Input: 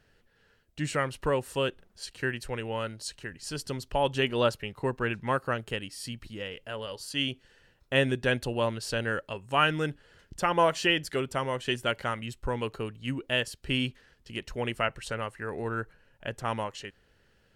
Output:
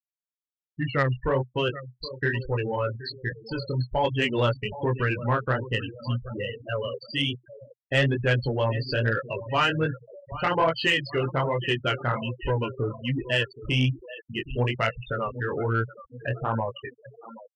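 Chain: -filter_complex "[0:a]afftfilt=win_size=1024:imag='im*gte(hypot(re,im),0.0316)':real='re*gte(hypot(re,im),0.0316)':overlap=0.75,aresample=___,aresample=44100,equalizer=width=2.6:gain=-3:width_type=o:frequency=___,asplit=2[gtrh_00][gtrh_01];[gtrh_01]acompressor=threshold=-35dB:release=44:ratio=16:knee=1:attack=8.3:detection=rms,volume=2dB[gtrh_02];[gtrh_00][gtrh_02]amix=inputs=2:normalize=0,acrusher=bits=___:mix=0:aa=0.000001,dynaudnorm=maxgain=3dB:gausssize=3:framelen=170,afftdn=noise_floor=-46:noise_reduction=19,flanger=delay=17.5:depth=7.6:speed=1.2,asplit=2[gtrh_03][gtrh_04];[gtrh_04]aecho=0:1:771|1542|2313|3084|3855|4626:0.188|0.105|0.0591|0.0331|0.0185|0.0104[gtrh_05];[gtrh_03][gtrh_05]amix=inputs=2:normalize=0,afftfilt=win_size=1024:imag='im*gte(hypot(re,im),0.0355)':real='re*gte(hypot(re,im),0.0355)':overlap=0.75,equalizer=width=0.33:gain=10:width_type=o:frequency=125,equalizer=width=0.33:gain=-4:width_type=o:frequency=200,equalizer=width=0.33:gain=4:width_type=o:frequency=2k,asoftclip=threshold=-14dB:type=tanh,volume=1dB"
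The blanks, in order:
11025, 74, 7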